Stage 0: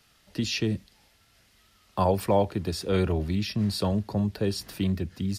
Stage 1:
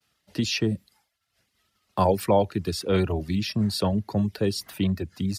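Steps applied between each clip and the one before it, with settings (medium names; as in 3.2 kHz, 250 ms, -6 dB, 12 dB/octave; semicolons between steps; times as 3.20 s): reverb removal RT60 0.71 s; expander -55 dBFS; high-pass 71 Hz; trim +3 dB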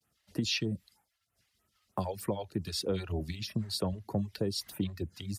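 dynamic bell 3.7 kHz, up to +4 dB, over -43 dBFS; compression 6:1, threshold -26 dBFS, peak gain reduction 11 dB; phase shifter stages 2, 3.2 Hz, lowest notch 180–4500 Hz; trim -2.5 dB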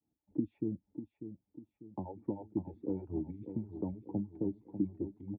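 cascade formant filter u; feedback delay 595 ms, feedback 42%, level -10 dB; trim +5.5 dB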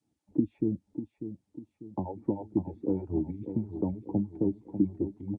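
trim +7 dB; Vorbis 48 kbps 22.05 kHz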